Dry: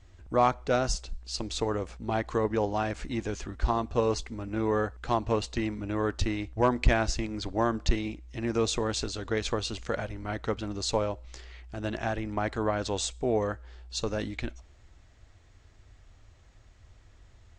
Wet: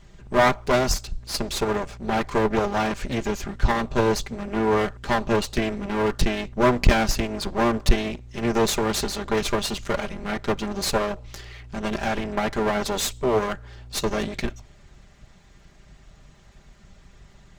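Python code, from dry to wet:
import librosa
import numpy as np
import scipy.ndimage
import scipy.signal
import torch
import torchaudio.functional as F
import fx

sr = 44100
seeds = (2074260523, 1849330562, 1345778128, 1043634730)

y = fx.lower_of_two(x, sr, delay_ms=5.0)
y = y * librosa.db_to_amplitude(8.0)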